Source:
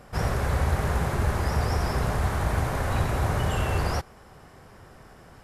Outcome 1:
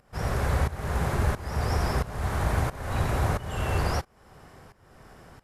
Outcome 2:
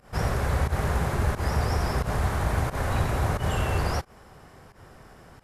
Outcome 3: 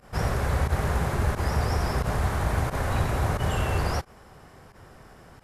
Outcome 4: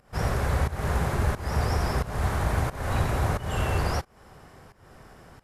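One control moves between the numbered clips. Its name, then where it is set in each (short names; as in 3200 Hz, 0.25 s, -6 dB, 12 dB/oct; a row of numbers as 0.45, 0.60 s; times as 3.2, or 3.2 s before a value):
pump, release: 534, 109, 65, 311 ms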